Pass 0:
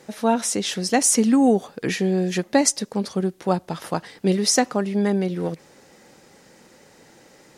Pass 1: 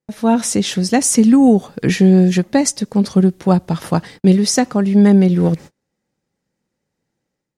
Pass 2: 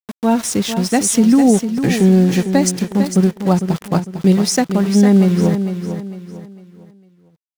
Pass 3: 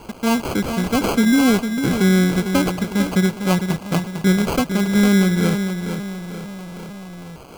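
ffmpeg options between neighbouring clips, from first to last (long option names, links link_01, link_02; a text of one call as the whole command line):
ffmpeg -i in.wav -af "agate=range=-36dB:threshold=-42dB:ratio=16:detection=peak,bass=frequency=250:gain=11,treble=frequency=4000:gain=0,dynaudnorm=framelen=110:gausssize=5:maxgain=9.5dB,volume=-1dB" out.wav
ffmpeg -i in.wav -filter_complex "[0:a]aeval=exprs='val(0)*gte(abs(val(0)),0.0596)':channel_layout=same,asplit=2[link_01][link_02];[link_02]aecho=0:1:452|904|1356|1808:0.355|0.124|0.0435|0.0152[link_03];[link_01][link_03]amix=inputs=2:normalize=0,volume=-1dB" out.wav
ffmpeg -i in.wav -af "aeval=exprs='val(0)+0.5*0.0596*sgn(val(0))':channel_layout=same,asuperstop=centerf=2700:order=4:qfactor=5.4,acrusher=samples=24:mix=1:aa=0.000001,volume=-4.5dB" out.wav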